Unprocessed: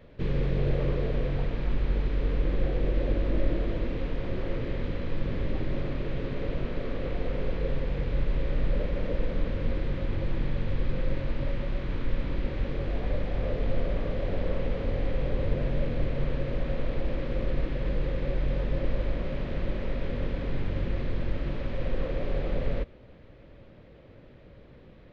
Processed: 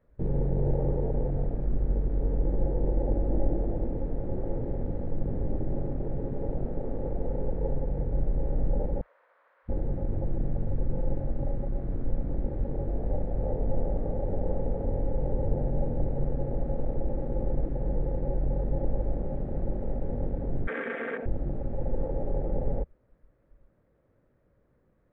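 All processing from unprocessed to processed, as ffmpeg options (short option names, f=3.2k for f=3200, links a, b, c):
-filter_complex "[0:a]asettb=1/sr,asplit=3[a][b][c];[a]atrim=end=9.014[d];[b]atrim=start=9.01:end=9.69,asetpts=PTS-STARTPTS,afade=t=in:d=0.004:c=qsin,afade=t=out:st=0.676:d=0.004:c=qsin,highpass=f=810:w=0.5412,highpass=f=810:w=1.3066,highshelf=f=3.7k:g=-11.5[e];[c]atrim=start=9.686[f];[d][e]acrossfade=d=0.004:c1=hsin:c2=qsin[g];[g][f]acrossfade=d=0.004:c1=qsin:c2=hsin,asettb=1/sr,asplit=3[h][i][j];[h]atrim=end=20.674[k];[i]atrim=start=20.67:end=21.26,asetpts=PTS-STARTPTS,afade=t=in:d=0.004:c=qsin,afade=t=out:st=0.586:d=0.004:c=qsin,highpass=f=330:w=0.5412,highpass=f=330:w=1.3066,equalizer=f=370:t=q:w=4:g=-5,equalizer=f=590:t=q:w=4:g=-3,equalizer=f=850:t=q:w=4:g=-8,equalizer=f=1.6k:t=q:w=4:g=8,equalizer=f=2.3k:t=q:w=4:g=8,lowpass=f=3.1k:w=0.5412,lowpass=f=3.1k:w=1.3066,acontrast=80,aecho=1:1:4.4:0.86,atrim=end_sample=26019[l];[j]atrim=start=21.256[m];[k][l]acrossfade=d=0.004:c1=hsin:c2=qsin[n];[n][m]acrossfade=d=0.004:c1=qsin:c2=hsin,afwtdn=0.0282,highshelf=f=2.1k:t=q:w=1.5:g=-10.5"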